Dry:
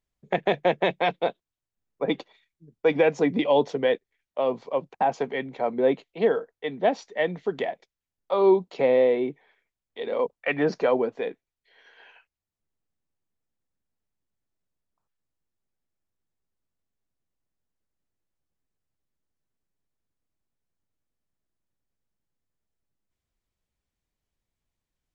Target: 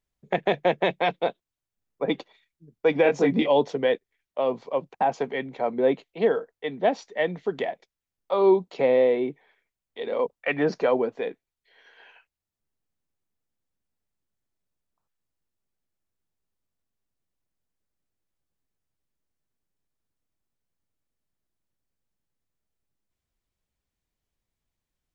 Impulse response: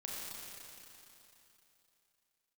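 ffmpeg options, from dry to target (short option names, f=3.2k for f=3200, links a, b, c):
-filter_complex "[0:a]asettb=1/sr,asplit=3[a][b][c];[a]atrim=end=3.034[d];[b]atrim=start=3.03:end=3.48,asetpts=PTS-STARTPTS,afade=t=in:d=0.004:c=qsin,afade=t=out:st=0.446:d=0.004:c=qsin,asplit=2[e][f];[f]adelay=22,volume=-2.5dB[g];[e][g]amix=inputs=2:normalize=0,atrim=end_sample=19845[h];[c]atrim=start=3.476[i];[d][h]acrossfade=d=0.004:c1=hsin:c2=qsin[j];[j][i]acrossfade=d=0.004:c1=qsin:c2=hsin"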